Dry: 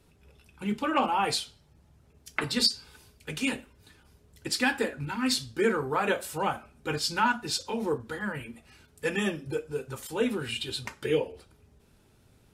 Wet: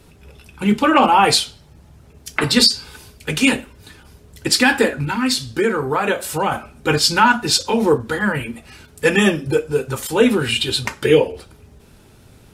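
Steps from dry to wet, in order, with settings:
0:04.93–0:06.52: downward compressor 2 to 1, threshold −34 dBFS, peak gain reduction 8 dB
boost into a limiter +15 dB
level −1 dB

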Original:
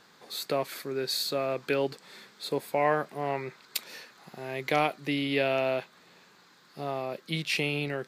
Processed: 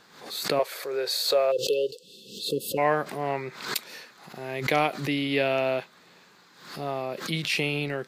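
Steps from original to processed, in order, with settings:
0:00.59–0:02.03: low shelf with overshoot 340 Hz −13 dB, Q 3
0:01.52–0:02.78: time-frequency box erased 550–2,600 Hz
background raised ahead of every attack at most 89 dB per second
level +2 dB

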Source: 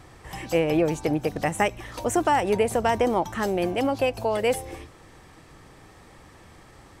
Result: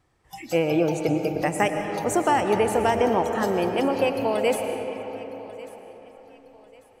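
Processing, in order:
noise reduction from a noise print of the clip's start 19 dB
feedback echo with a high-pass in the loop 1,143 ms, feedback 34%, high-pass 170 Hz, level −19.5 dB
convolution reverb RT60 4.0 s, pre-delay 75 ms, DRR 5 dB

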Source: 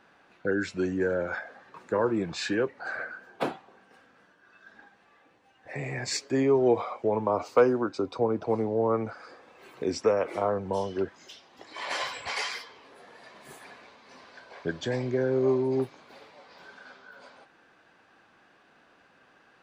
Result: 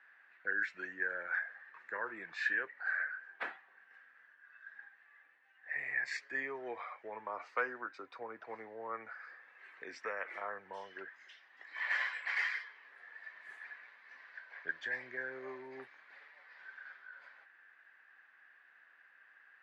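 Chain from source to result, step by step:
resonant band-pass 1,800 Hz, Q 6.2
level +6 dB

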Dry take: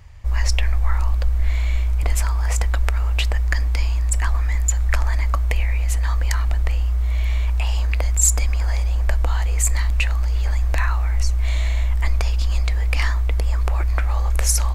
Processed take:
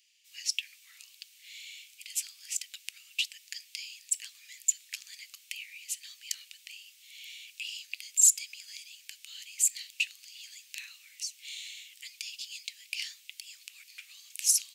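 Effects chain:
Chebyshev high-pass filter 2,700 Hz, order 4
level −3 dB

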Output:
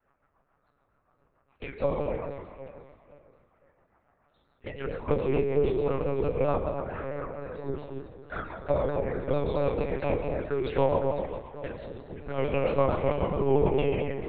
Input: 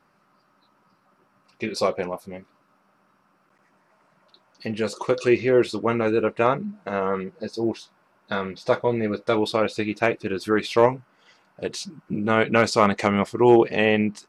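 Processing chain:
peak hold with a decay on every bin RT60 1.30 s
high-pass filter 81 Hz
three-way crossover with the lows and the highs turned down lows −21 dB, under 240 Hz, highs −14 dB, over 2,200 Hz
harmonic and percussive parts rebalanced harmonic −8 dB
low-shelf EQ 350 Hz +3 dB
flanger swept by the level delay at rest 8.7 ms, full sweep at −22.5 dBFS
rotating-speaker cabinet horn 7 Hz
delay that swaps between a low-pass and a high-pass 256 ms, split 930 Hz, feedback 53%, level −6 dB
one-pitch LPC vocoder at 8 kHz 140 Hz
pitch modulation by a square or saw wave saw down 4.5 Hz, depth 100 cents

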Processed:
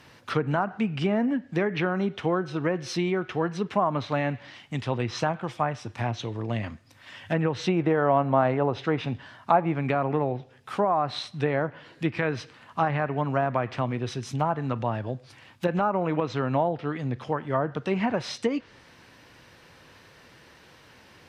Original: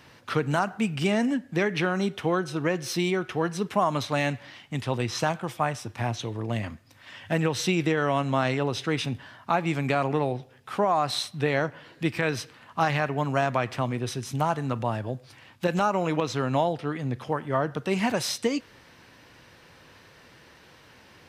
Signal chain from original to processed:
0:07.57–0:09.74: dynamic equaliser 730 Hz, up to +6 dB, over −39 dBFS, Q 1.1
treble cut that deepens with the level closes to 1,500 Hz, closed at −20 dBFS

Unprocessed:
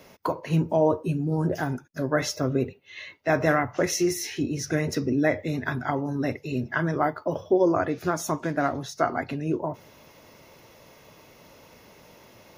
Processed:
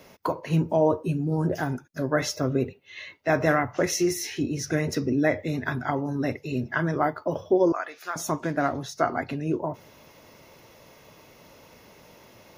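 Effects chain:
0:07.72–0:08.16: high-pass filter 1,100 Hz 12 dB per octave

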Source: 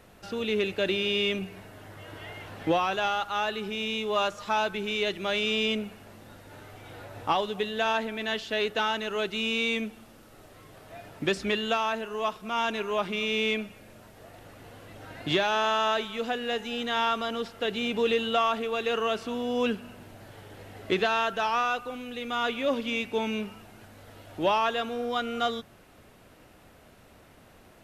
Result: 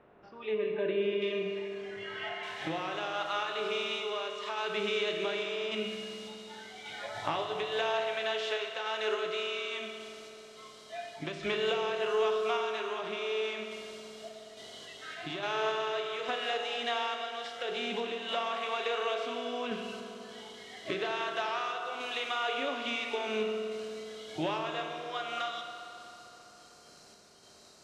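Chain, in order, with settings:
compressor on every frequency bin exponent 0.6
low-pass filter 1,700 Hz 12 dB per octave, from 0:01.22 3,300 Hz, from 0:02.43 7,700 Hz
noise reduction from a noise print of the clip's start 21 dB
downward compressor, threshold −29 dBFS, peak gain reduction 11.5 dB
sample-and-hold tremolo
convolution reverb RT60 3.6 s, pre-delay 4 ms, DRR 2.5 dB
level −1 dB

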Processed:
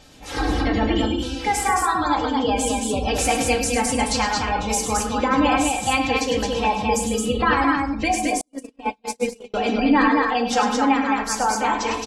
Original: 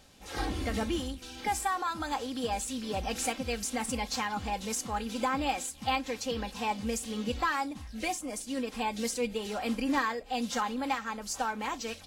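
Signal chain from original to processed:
gate on every frequency bin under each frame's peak −25 dB strong
on a send: loudspeakers that aren't time-aligned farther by 35 metres −8 dB, 75 metres −3 dB
on the sum: feedback delay network reverb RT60 0.6 s, low-frequency decay 0.95×, high-frequency decay 0.6×, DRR 3.5 dB
0:08.41–0:09.54: noise gate −25 dBFS, range −46 dB
level +8.5 dB

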